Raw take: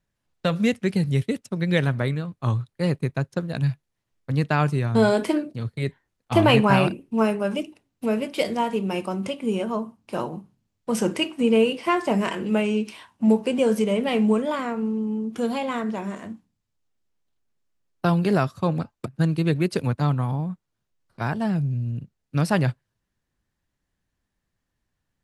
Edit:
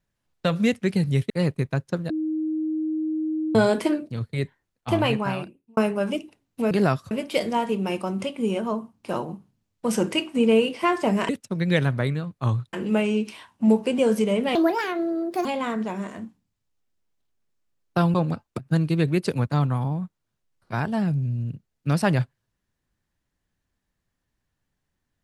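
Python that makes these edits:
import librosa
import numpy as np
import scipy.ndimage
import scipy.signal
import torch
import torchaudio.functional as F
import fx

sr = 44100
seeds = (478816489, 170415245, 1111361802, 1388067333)

y = fx.edit(x, sr, fx.move(start_s=1.3, length_s=1.44, to_s=12.33),
    fx.bleep(start_s=3.54, length_s=1.45, hz=313.0, db=-23.0),
    fx.fade_out_span(start_s=5.85, length_s=1.36),
    fx.speed_span(start_s=14.15, length_s=1.38, speed=1.53),
    fx.move(start_s=18.22, length_s=0.4, to_s=8.15), tone=tone)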